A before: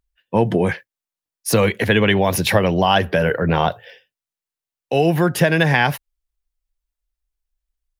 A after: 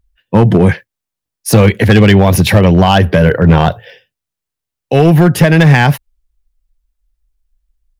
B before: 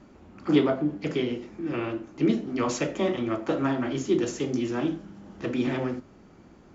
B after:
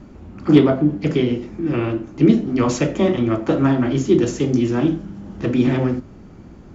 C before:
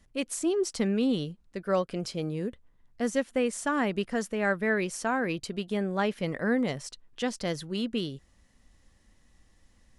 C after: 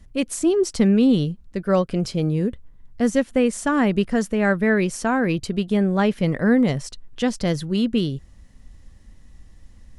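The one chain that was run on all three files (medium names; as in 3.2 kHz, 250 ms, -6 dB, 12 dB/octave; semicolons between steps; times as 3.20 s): bass shelf 220 Hz +12 dB; hard clipper -6.5 dBFS; trim +5 dB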